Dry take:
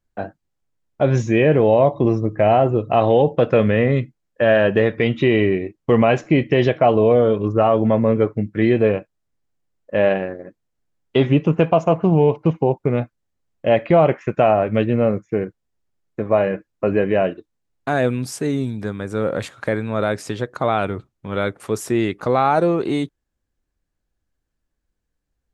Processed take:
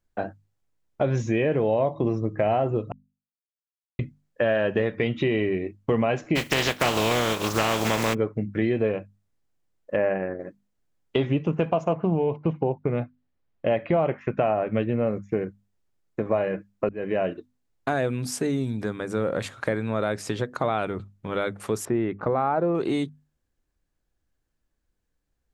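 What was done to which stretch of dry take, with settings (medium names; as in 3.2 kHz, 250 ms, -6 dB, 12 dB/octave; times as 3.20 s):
2.92–3.99 s: mute
6.35–8.13 s: spectral contrast reduction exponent 0.35
9.96–10.40 s: steep low-pass 2.4 kHz
11.93–15.07 s: low-pass 3.6 kHz
16.89–17.30 s: fade in
21.85–22.75 s: low-pass 1.6 kHz
whole clip: compression 2.5:1, threshold -23 dBFS; hum notches 50/100/150/200/250 Hz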